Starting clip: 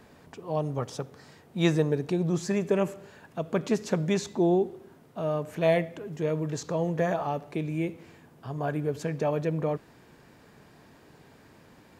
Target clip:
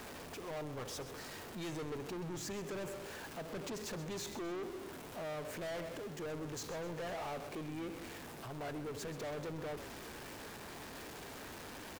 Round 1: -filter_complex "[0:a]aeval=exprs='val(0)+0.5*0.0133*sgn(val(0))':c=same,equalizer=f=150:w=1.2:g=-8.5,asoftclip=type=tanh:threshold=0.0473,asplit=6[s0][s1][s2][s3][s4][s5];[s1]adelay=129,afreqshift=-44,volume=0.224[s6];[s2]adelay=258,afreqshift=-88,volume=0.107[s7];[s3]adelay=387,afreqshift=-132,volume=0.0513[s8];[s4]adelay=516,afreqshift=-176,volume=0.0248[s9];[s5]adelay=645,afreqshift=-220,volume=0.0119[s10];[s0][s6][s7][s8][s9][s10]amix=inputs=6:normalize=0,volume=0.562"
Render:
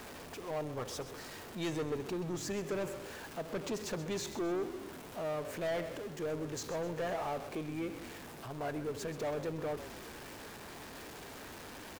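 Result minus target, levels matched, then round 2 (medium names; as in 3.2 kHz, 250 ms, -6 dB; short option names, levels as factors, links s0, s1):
saturation: distortion -5 dB
-filter_complex "[0:a]aeval=exprs='val(0)+0.5*0.0133*sgn(val(0))':c=same,equalizer=f=150:w=1.2:g=-8.5,asoftclip=type=tanh:threshold=0.0188,asplit=6[s0][s1][s2][s3][s4][s5];[s1]adelay=129,afreqshift=-44,volume=0.224[s6];[s2]adelay=258,afreqshift=-88,volume=0.107[s7];[s3]adelay=387,afreqshift=-132,volume=0.0513[s8];[s4]adelay=516,afreqshift=-176,volume=0.0248[s9];[s5]adelay=645,afreqshift=-220,volume=0.0119[s10];[s0][s6][s7][s8][s9][s10]amix=inputs=6:normalize=0,volume=0.562"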